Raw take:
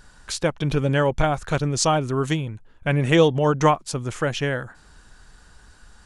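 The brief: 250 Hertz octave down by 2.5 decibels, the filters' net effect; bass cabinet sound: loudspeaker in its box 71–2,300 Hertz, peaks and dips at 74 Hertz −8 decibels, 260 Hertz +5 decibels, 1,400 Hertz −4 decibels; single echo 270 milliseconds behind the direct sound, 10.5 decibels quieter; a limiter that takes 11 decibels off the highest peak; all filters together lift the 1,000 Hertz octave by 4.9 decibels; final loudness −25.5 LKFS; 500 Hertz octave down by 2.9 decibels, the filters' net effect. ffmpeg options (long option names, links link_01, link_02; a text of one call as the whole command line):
ffmpeg -i in.wav -af "equalizer=frequency=250:width_type=o:gain=-5.5,equalizer=frequency=500:width_type=o:gain=-4.5,equalizer=frequency=1000:width_type=o:gain=8.5,alimiter=limit=-11.5dB:level=0:latency=1,highpass=frequency=71:width=0.5412,highpass=frequency=71:width=1.3066,equalizer=frequency=74:width_type=q:width=4:gain=-8,equalizer=frequency=260:width_type=q:width=4:gain=5,equalizer=frequency=1400:width_type=q:width=4:gain=-4,lowpass=frequency=2300:width=0.5412,lowpass=frequency=2300:width=1.3066,aecho=1:1:270:0.299,volume=-0.5dB" out.wav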